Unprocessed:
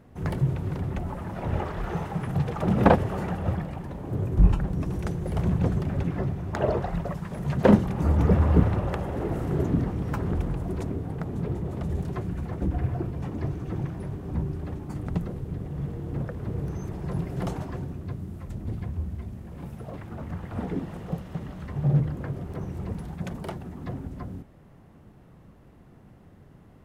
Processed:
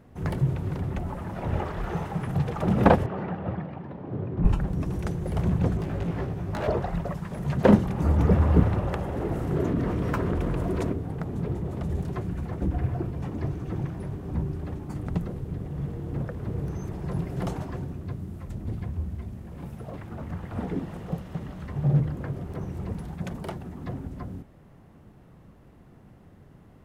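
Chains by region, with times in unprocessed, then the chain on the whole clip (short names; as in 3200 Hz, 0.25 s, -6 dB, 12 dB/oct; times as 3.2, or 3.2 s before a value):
3.06–4.45 HPF 130 Hz + air absorption 310 m
5.77–6.68 overloaded stage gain 27.5 dB + doubler 18 ms -3 dB
9.56–10.93 tone controls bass -6 dB, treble -4 dB + notch 810 Hz, Q 7.3 + fast leveller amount 70%
whole clip: dry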